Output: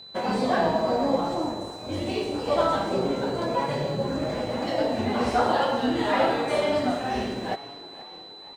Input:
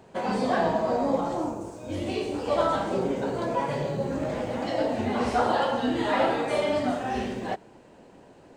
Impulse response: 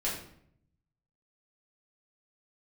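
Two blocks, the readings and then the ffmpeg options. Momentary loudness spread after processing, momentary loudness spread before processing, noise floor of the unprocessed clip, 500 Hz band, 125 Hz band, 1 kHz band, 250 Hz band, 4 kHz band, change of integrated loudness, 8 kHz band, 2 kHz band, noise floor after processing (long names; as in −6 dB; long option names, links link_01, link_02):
10 LU, 7 LU, −53 dBFS, +1.5 dB, +1.0 dB, +1.5 dB, +1.0 dB, +4.5 dB, +1.5 dB, +1.5 dB, +1.5 dB, −44 dBFS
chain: -filter_complex "[0:a]aeval=exprs='sgn(val(0))*max(abs(val(0))-0.00211,0)':channel_layout=same,asplit=6[link_01][link_02][link_03][link_04][link_05][link_06];[link_02]adelay=478,afreqshift=53,volume=-18dB[link_07];[link_03]adelay=956,afreqshift=106,volume=-23.2dB[link_08];[link_04]adelay=1434,afreqshift=159,volume=-28.4dB[link_09];[link_05]adelay=1912,afreqshift=212,volume=-33.6dB[link_10];[link_06]adelay=2390,afreqshift=265,volume=-38.8dB[link_11];[link_01][link_07][link_08][link_09][link_10][link_11]amix=inputs=6:normalize=0,aeval=exprs='val(0)+0.00631*sin(2*PI*4000*n/s)':channel_layout=same,volume=1.5dB"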